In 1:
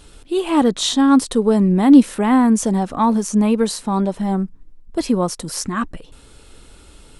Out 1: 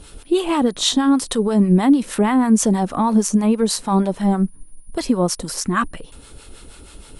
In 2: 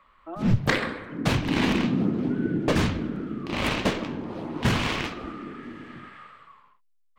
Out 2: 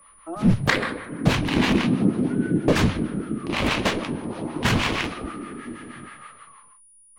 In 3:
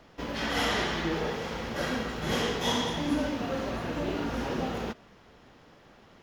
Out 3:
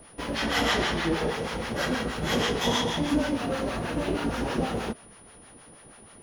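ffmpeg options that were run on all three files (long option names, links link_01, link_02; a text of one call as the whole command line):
ffmpeg -i in.wav -filter_complex "[0:a]alimiter=limit=-12dB:level=0:latency=1:release=141,acrossover=split=690[link_01][link_02];[link_01]aeval=exprs='val(0)*(1-0.7/2+0.7/2*cos(2*PI*6.3*n/s))':channel_layout=same[link_03];[link_02]aeval=exprs='val(0)*(1-0.7/2-0.7/2*cos(2*PI*6.3*n/s))':channel_layout=same[link_04];[link_03][link_04]amix=inputs=2:normalize=0,aeval=exprs='val(0)+0.00126*sin(2*PI*9700*n/s)':channel_layout=same,volume=6.5dB" out.wav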